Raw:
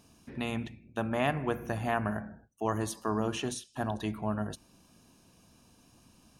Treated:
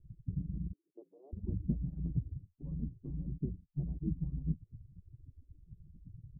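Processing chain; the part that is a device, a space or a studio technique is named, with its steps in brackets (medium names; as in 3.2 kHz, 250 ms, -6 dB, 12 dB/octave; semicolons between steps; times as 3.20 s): harmonic-percussive separation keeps percussive; the neighbour's flat through the wall (low-pass 170 Hz 24 dB/octave; peaking EQ 110 Hz +7 dB 0.56 oct); 0.73–1.33 s: Chebyshev band-pass 340–1200 Hz, order 4; trim +17 dB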